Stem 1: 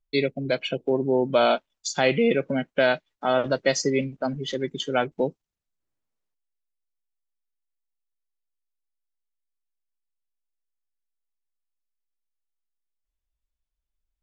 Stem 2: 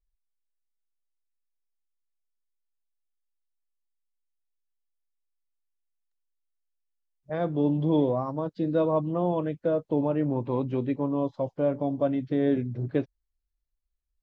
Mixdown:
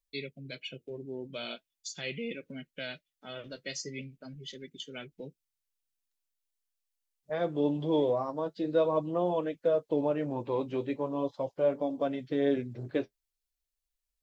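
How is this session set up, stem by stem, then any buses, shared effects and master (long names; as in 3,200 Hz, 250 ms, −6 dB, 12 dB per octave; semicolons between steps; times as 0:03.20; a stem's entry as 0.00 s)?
−10.5 dB, 0.00 s, no send, drawn EQ curve 140 Hz 0 dB, 820 Hz −19 dB, 2,500 Hz +4 dB
+1.0 dB, 0.00 s, no send, tilt shelving filter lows −9 dB, about 1,400 Hz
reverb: not used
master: parametric band 480 Hz +8.5 dB 1.7 octaves; flanger 0.42 Hz, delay 3.4 ms, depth 7.7 ms, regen −45%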